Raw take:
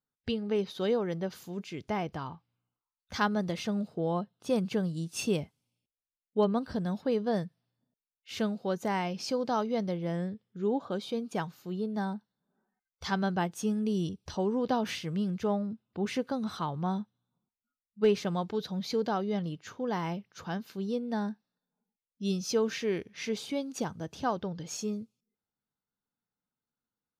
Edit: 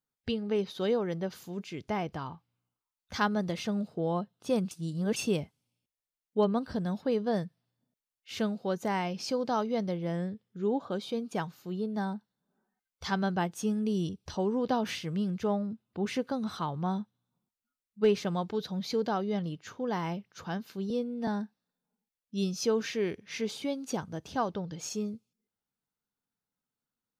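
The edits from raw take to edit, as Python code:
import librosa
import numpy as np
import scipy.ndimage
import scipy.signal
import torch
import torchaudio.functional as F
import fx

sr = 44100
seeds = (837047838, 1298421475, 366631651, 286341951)

y = fx.edit(x, sr, fx.reverse_span(start_s=4.71, length_s=0.45),
    fx.stretch_span(start_s=20.9, length_s=0.25, factor=1.5), tone=tone)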